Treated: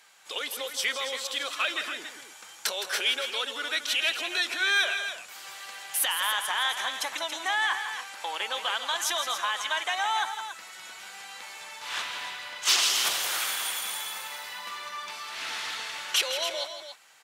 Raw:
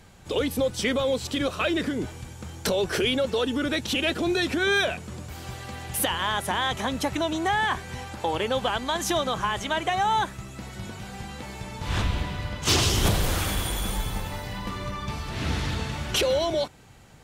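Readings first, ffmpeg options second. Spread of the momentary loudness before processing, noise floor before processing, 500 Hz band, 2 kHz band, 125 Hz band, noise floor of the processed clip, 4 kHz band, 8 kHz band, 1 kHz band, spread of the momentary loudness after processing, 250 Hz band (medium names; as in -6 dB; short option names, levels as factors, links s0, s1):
14 LU, -42 dBFS, -12.5 dB, +1.0 dB, under -35 dB, -48 dBFS, +1.5 dB, +1.5 dB, -4.0 dB, 16 LU, -23.0 dB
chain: -af "highpass=1200,aecho=1:1:163.3|279.9:0.316|0.316,volume=1.12"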